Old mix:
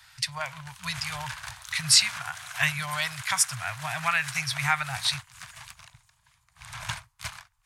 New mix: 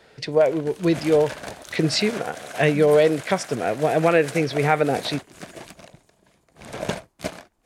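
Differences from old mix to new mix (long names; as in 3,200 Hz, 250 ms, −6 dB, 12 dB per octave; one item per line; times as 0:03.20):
speech: add high-frequency loss of the air 130 metres
master: remove elliptic band-stop filter 120–1,000 Hz, stop band 80 dB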